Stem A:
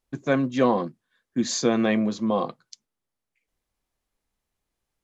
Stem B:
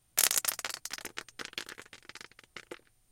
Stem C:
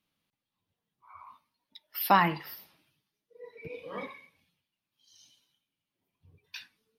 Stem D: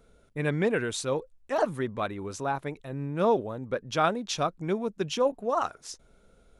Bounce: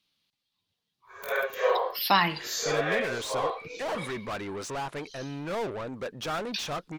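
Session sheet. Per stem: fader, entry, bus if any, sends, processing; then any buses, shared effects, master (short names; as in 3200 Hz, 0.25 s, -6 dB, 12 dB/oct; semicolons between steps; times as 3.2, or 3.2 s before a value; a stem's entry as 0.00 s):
-4.0 dB, 1.05 s, no send, phase scrambler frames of 0.2 s; steep high-pass 400 Hz 96 dB/oct; bell 1700 Hz +6.5 dB 1.4 oct
-4.0 dB, 1.05 s, no send, inverse Chebyshev band-stop 600–9600 Hz, stop band 40 dB; wrapped overs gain 29 dB
-2.0 dB, 0.00 s, no send, bell 4200 Hz +14.5 dB 1.4 oct
-8.0 dB, 2.30 s, no send, overdrive pedal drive 27 dB, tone 4800 Hz, clips at -19.5 dBFS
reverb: off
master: dry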